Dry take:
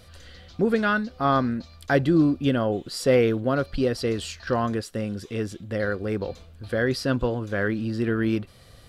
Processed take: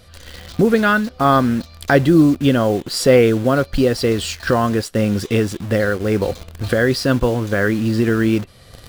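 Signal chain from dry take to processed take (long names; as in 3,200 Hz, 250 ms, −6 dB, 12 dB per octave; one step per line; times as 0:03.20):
camcorder AGC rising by 11 dB per second
in parallel at −3.5 dB: bit reduction 6 bits
on the sum: level +3 dB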